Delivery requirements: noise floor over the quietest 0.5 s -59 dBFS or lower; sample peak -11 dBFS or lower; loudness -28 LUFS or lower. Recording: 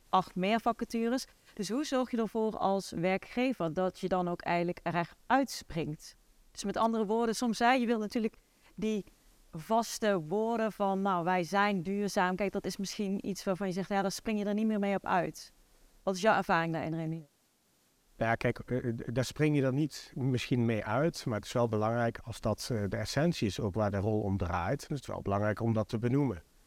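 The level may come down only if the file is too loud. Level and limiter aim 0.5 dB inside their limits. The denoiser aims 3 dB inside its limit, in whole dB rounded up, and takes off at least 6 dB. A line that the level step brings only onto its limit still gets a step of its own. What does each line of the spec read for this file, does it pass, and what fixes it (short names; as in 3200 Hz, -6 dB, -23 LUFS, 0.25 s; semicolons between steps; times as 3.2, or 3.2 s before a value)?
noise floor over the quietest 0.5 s -71 dBFS: OK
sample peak -14.0 dBFS: OK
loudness -32.0 LUFS: OK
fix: none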